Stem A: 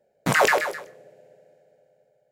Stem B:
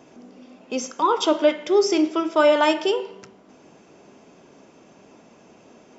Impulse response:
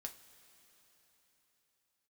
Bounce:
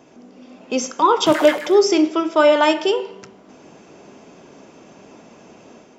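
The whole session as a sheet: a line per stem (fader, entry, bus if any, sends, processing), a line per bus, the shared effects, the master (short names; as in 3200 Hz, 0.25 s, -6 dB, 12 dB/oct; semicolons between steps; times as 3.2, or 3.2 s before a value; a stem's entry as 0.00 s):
-10.0 dB, 1.00 s, no send, dry
+0.5 dB, 0.00 s, no send, dry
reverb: off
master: AGC gain up to 5.5 dB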